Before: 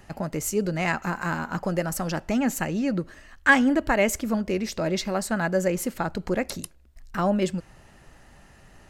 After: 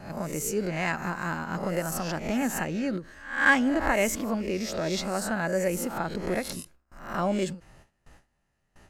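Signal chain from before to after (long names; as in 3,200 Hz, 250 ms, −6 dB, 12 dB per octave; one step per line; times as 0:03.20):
peak hold with a rise ahead of every peak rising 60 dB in 0.54 s
noise gate with hold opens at −39 dBFS
every ending faded ahead of time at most 230 dB per second
level −4.5 dB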